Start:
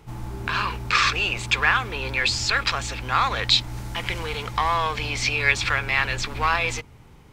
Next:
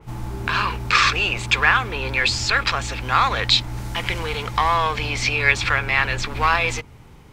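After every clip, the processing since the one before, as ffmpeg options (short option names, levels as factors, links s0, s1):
-af "adynamicequalizer=threshold=0.0224:dfrequency=2900:dqfactor=0.7:tfrequency=2900:tqfactor=0.7:attack=5:release=100:ratio=0.375:range=2:mode=cutabove:tftype=highshelf,volume=1.5"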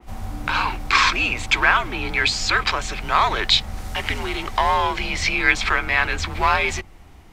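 -af "afreqshift=-100"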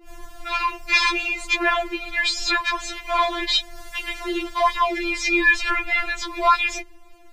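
-af "afftfilt=real='re*4*eq(mod(b,16),0)':imag='im*4*eq(mod(b,16),0)':win_size=2048:overlap=0.75"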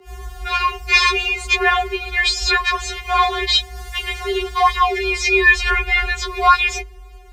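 -af "afreqshift=40,volume=1.68"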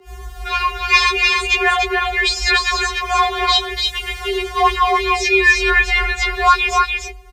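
-af "aecho=1:1:294:0.668"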